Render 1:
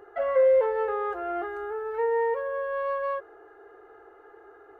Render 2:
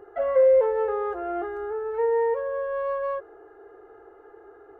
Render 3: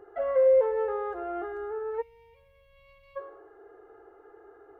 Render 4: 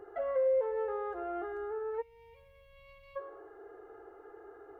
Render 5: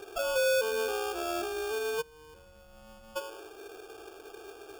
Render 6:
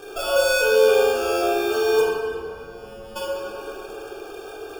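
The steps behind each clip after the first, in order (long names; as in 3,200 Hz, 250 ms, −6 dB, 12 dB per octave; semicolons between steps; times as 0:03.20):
tilt shelving filter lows +5 dB, about 890 Hz
feedback echo with a high-pass in the loop 103 ms, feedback 34%, level −12 dB; gain on a spectral selection 0:02.01–0:03.16, 210–2,000 Hz −30 dB; level −4 dB
downward compressor 1.5 to 1, threshold −44 dBFS, peak gain reduction 9.5 dB; level +1 dB
in parallel at +1 dB: brickwall limiter −30.5 dBFS, peak gain reduction 7.5 dB; on the sum: sample-rate reduction 2,000 Hz, jitter 0%; level −2 dB
convolution reverb RT60 2.7 s, pre-delay 7 ms, DRR −5.5 dB; level +4 dB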